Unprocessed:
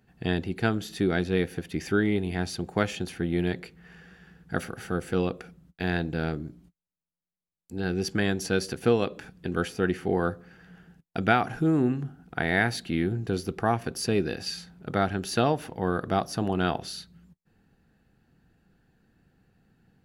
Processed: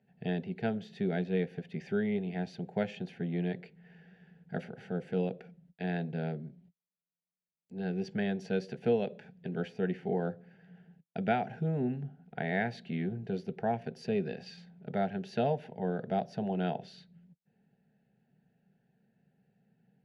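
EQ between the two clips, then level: band-pass 110–2200 Hz; static phaser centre 310 Hz, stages 6; band-stop 500 Hz, Q 14; -2.5 dB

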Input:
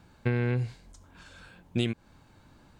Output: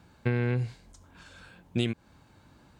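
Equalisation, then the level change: high-pass 42 Hz; 0.0 dB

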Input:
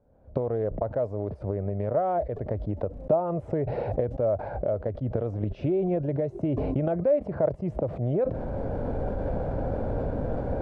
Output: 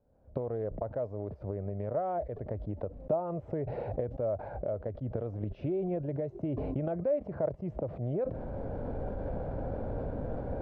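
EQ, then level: distance through air 99 m; -6.5 dB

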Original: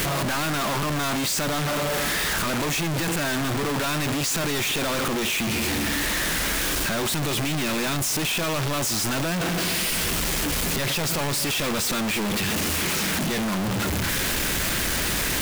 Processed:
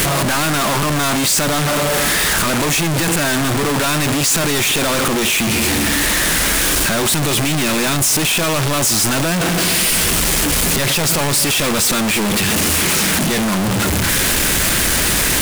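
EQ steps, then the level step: peaking EQ 9.4 kHz +4.5 dB 0.85 oct; +8.0 dB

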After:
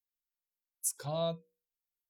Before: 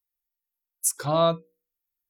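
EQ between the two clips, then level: graphic EQ with 31 bands 315 Hz -10 dB, 1.25 kHz -11 dB, 2 kHz -6 dB; dynamic bell 1.3 kHz, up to -5 dB, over -35 dBFS, Q 0.76; -9.0 dB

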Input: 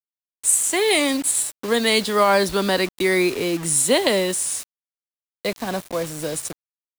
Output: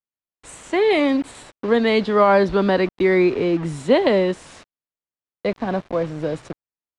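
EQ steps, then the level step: tape spacing loss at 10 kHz 36 dB; +5.0 dB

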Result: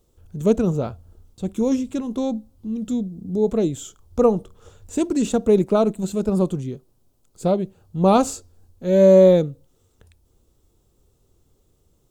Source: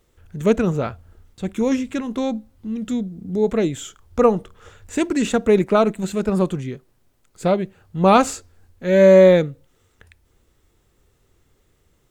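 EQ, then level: peaking EQ 1.9 kHz -15 dB 1.2 oct; 0.0 dB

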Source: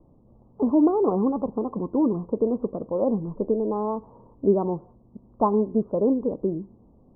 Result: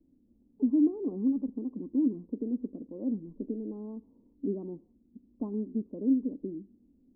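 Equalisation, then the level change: cascade formant filter i; peaking EQ 130 Hz -12.5 dB 0.74 oct; 0.0 dB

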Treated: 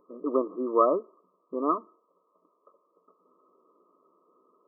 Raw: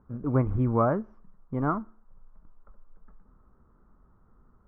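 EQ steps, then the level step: dynamic bell 560 Hz, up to -3 dB, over -41 dBFS, Q 1.2; brick-wall FIR band-pass 190–1300 Hz; static phaser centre 810 Hz, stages 6; +7.5 dB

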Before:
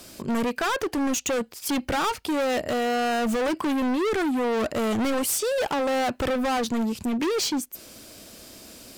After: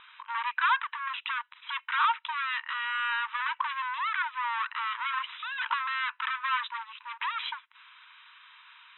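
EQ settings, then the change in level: brick-wall FIR high-pass 900 Hz; brick-wall FIR low-pass 4 kHz; distance through air 310 m; +5.0 dB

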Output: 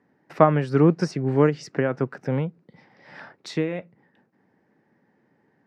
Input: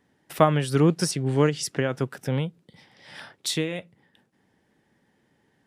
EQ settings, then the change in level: high-pass 140 Hz 12 dB/octave; distance through air 210 m; peaking EQ 3.3 kHz -13 dB 0.58 oct; +3.5 dB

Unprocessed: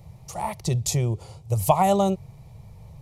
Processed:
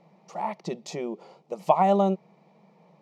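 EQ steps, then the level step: brick-wall FIR high-pass 170 Hz; distance through air 210 m; peaking EQ 3.5 kHz -3.5 dB 0.73 oct; 0.0 dB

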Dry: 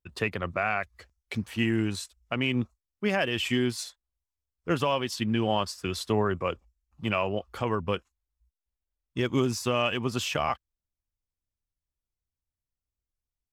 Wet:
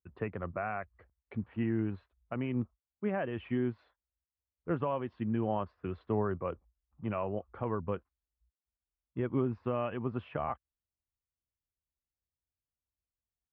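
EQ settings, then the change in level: high-pass 44 Hz; low-pass 1.6 kHz 12 dB/octave; distance through air 450 m; -4.5 dB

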